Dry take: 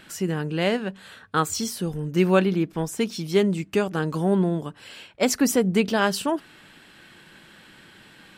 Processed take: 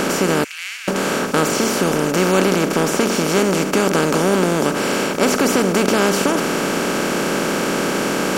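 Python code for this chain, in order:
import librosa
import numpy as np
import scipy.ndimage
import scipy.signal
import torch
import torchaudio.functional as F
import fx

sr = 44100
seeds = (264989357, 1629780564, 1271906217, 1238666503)

y = fx.bin_compress(x, sr, power=0.2)
y = fx.ladder_highpass(y, sr, hz=1900.0, resonance_pct=50, at=(0.44, 0.88))
y = F.gain(torch.from_numpy(y), -2.5).numpy()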